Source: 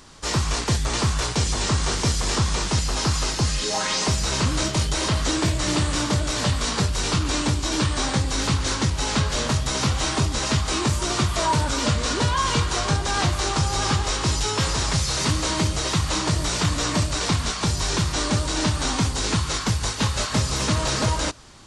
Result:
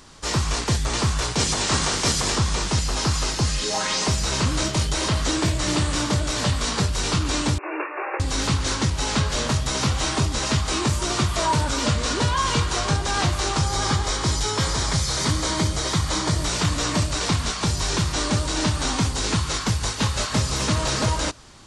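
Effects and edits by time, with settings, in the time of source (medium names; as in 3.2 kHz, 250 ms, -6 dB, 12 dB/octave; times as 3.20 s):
1.38–2.31 s: spectral peaks clipped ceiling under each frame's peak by 13 dB
7.58–8.20 s: brick-wall FIR band-pass 310–2800 Hz
13.64–16.39 s: band-stop 2.7 kHz, Q 7.8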